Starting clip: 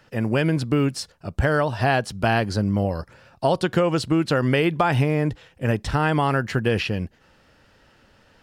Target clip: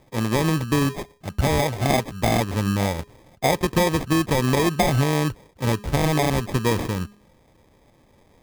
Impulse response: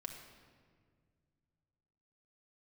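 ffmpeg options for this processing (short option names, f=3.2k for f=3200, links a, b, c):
-af "bandreject=f=206.9:t=h:w=4,bandreject=f=413.8:t=h:w=4,atempo=1,acrusher=samples=31:mix=1:aa=0.000001"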